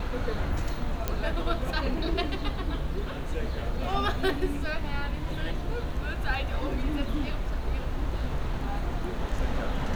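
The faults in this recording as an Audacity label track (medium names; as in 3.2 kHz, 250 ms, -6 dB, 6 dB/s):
1.080000	1.080000	pop -13 dBFS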